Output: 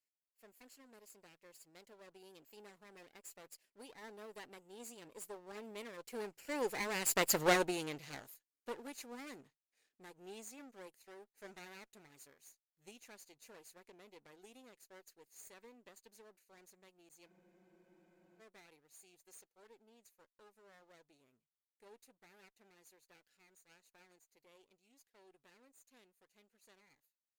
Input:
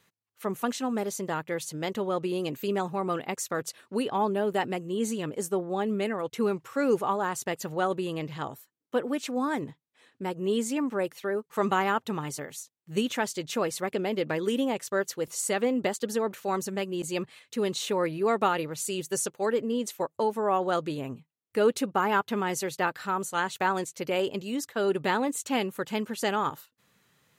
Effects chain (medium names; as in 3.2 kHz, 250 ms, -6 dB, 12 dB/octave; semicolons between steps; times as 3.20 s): comb filter that takes the minimum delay 0.42 ms; Doppler pass-by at 7.38 s, 14 m/s, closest 2.3 m; tone controls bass -13 dB, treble +8 dB; spectral freeze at 17.29 s, 1.11 s; trim +4 dB